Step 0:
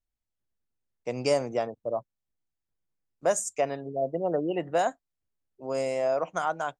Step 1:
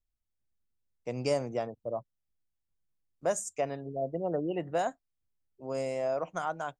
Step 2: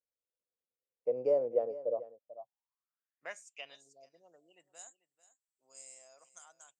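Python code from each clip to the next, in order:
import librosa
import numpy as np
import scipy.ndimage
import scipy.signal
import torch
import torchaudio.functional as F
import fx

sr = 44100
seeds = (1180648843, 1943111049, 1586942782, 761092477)

y1 = fx.low_shelf(x, sr, hz=190.0, db=8.5)
y1 = y1 * 10.0 ** (-5.5 / 20.0)
y2 = y1 + 10.0 ** (-16.5 / 20.0) * np.pad(y1, (int(441 * sr / 1000.0), 0))[:len(y1)]
y2 = fx.filter_sweep_bandpass(y2, sr, from_hz=500.0, to_hz=7800.0, start_s=2.1, end_s=4.42, q=7.1)
y2 = y2 * 10.0 ** (8.5 / 20.0)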